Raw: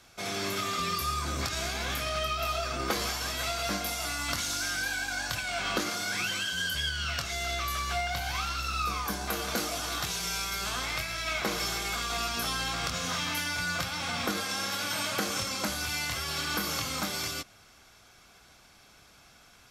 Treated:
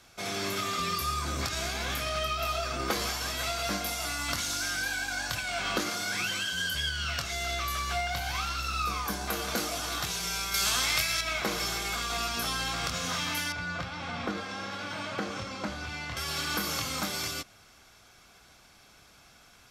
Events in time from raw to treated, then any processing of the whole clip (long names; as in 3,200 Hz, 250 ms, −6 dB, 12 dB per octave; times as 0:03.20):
0:10.54–0:11.21: high-shelf EQ 2,300 Hz +10 dB
0:13.52–0:16.17: head-to-tape spacing loss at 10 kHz 21 dB